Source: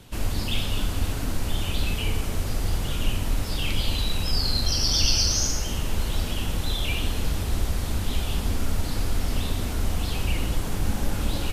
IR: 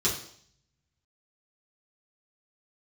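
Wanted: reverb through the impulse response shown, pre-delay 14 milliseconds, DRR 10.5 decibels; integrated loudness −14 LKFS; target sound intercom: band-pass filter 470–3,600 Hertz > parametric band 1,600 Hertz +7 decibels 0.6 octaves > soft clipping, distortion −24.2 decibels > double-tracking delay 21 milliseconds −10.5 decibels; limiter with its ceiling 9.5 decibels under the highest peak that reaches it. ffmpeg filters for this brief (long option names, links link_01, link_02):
-filter_complex "[0:a]alimiter=limit=-17dB:level=0:latency=1,asplit=2[link_01][link_02];[1:a]atrim=start_sample=2205,adelay=14[link_03];[link_02][link_03]afir=irnorm=-1:irlink=0,volume=-20.5dB[link_04];[link_01][link_04]amix=inputs=2:normalize=0,highpass=470,lowpass=3600,equalizer=frequency=1600:width_type=o:width=0.6:gain=7,asoftclip=threshold=-24.5dB,asplit=2[link_05][link_06];[link_06]adelay=21,volume=-10.5dB[link_07];[link_05][link_07]amix=inputs=2:normalize=0,volume=21dB"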